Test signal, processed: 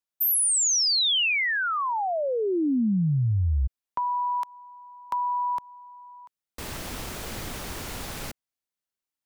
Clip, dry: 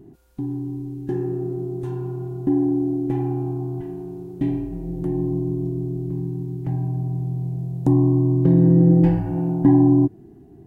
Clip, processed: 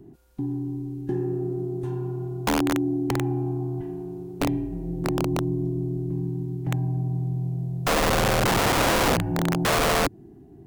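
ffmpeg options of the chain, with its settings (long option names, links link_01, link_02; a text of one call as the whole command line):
ffmpeg -i in.wav -filter_complex "[0:a]acrossover=split=270|3000[link_01][link_02][link_03];[link_02]acompressor=threshold=-24dB:ratio=6[link_04];[link_01][link_04][link_03]amix=inputs=3:normalize=0,aeval=exprs='(mod(5.62*val(0)+1,2)-1)/5.62':channel_layout=same,volume=-1.5dB" out.wav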